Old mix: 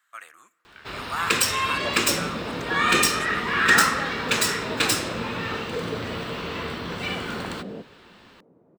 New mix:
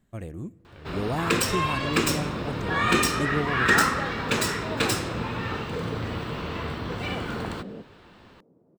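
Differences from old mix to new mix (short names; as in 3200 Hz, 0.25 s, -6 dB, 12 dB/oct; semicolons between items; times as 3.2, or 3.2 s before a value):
speech: remove resonant high-pass 1300 Hz, resonance Q 4.2; second sound -7.0 dB; master: add tilt shelf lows +5.5 dB, about 890 Hz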